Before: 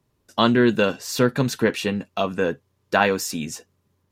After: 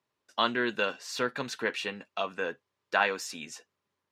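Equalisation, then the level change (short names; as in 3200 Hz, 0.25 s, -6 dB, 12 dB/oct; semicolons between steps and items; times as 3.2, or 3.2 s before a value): band-pass 2000 Hz, Q 0.5; -4.5 dB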